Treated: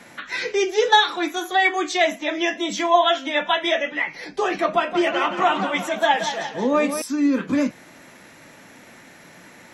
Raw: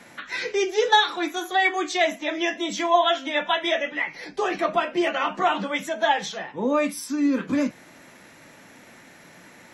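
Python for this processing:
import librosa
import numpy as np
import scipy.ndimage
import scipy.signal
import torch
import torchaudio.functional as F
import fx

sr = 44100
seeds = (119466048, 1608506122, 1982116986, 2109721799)

y = fx.echo_warbled(x, sr, ms=175, feedback_pct=48, rate_hz=2.8, cents=88, wet_db=-9.0, at=(4.72, 7.02))
y = y * librosa.db_to_amplitude(2.5)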